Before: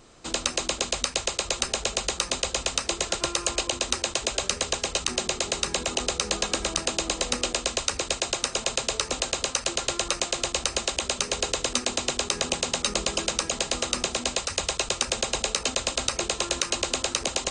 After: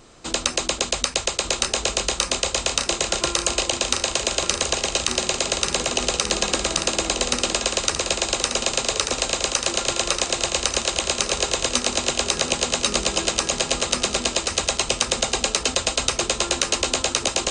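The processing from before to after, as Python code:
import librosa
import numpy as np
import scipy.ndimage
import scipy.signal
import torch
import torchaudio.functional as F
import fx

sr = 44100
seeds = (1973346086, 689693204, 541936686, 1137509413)

y = fx.echo_feedback(x, sr, ms=1188, feedback_pct=43, wet_db=-7)
y = y * 10.0 ** (4.0 / 20.0)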